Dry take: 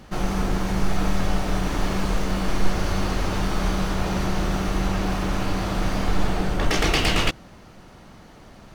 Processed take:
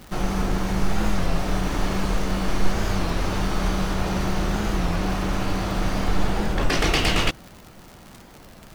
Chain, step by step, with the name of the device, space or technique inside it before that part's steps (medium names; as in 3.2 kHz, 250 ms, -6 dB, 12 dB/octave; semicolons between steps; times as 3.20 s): warped LP (warped record 33 1/3 rpm, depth 160 cents; crackle 120 per s -32 dBFS; white noise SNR 40 dB)